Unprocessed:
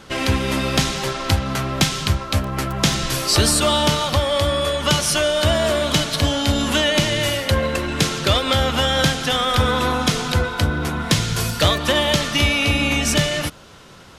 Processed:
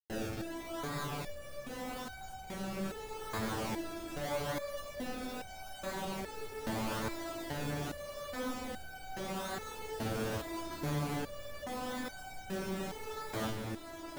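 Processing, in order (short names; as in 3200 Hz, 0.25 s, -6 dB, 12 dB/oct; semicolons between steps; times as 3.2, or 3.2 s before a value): high shelf 6100 Hz +9 dB; Schmitt trigger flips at -30 dBFS; decimation with a swept rate 30×, swing 100% 0.81 Hz; on a send: diffused feedback echo 1.039 s, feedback 71%, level -6.5 dB; on the sum: stepped resonator 2.4 Hz 110–760 Hz; gain -8.5 dB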